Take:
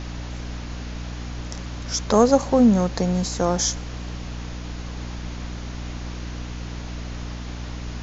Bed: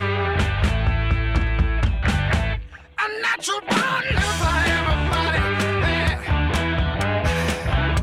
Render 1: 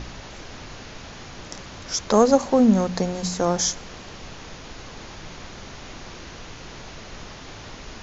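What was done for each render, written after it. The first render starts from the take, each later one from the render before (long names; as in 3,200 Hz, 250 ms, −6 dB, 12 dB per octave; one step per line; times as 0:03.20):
hum removal 60 Hz, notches 5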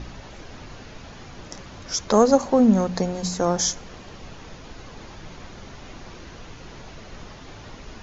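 broadband denoise 6 dB, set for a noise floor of −41 dBFS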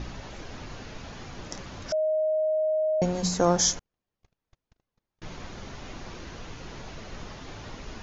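0:01.92–0:03.02: beep over 624 Hz −22 dBFS
0:03.79–0:05.22: noise gate −34 dBFS, range −47 dB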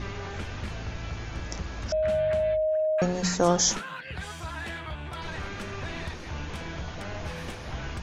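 mix in bed −16.5 dB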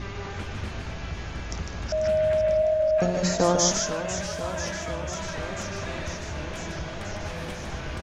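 single-tap delay 152 ms −5.5 dB
feedback echo with a swinging delay time 494 ms, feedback 79%, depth 138 cents, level −11.5 dB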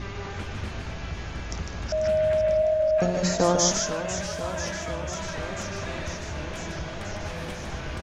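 no processing that can be heard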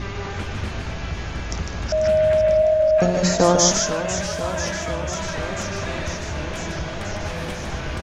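level +5.5 dB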